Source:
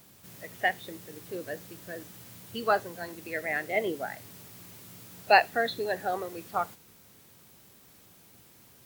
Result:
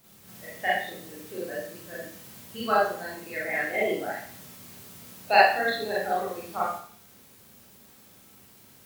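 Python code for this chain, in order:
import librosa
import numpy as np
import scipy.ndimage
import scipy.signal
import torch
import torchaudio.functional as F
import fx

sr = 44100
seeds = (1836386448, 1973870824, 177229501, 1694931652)

y = fx.rev_schroeder(x, sr, rt60_s=0.51, comb_ms=29, drr_db=-7.5)
y = y * 10.0 ** (-5.5 / 20.0)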